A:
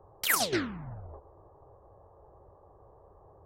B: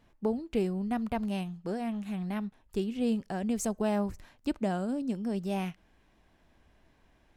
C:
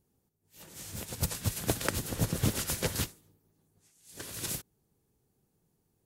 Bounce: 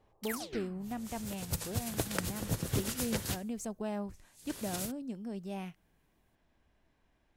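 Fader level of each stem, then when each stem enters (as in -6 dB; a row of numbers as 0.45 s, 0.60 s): -14.0 dB, -8.0 dB, -4.0 dB; 0.00 s, 0.00 s, 0.30 s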